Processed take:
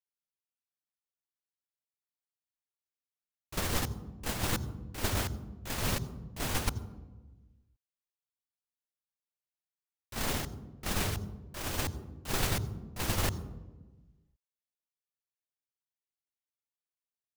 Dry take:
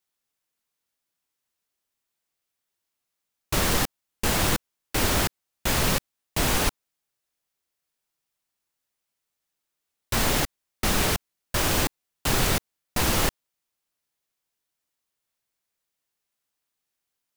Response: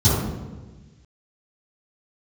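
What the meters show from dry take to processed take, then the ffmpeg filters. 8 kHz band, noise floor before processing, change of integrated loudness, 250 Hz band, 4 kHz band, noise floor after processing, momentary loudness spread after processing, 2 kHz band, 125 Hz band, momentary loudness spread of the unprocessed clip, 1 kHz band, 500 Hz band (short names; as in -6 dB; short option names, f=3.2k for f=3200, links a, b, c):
-10.0 dB, -83 dBFS, -9.5 dB, -8.5 dB, -10.0 dB, under -85 dBFS, 11 LU, -10.5 dB, -5.0 dB, 8 LU, -10.0 dB, -10.0 dB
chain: -filter_complex "[0:a]agate=range=-15dB:threshold=-21dB:ratio=16:detection=peak,asplit=2[a][b];[1:a]atrim=start_sample=2205,adelay=76[c];[b][c]afir=irnorm=-1:irlink=0,volume=-35dB[d];[a][d]amix=inputs=2:normalize=0,volume=-5dB"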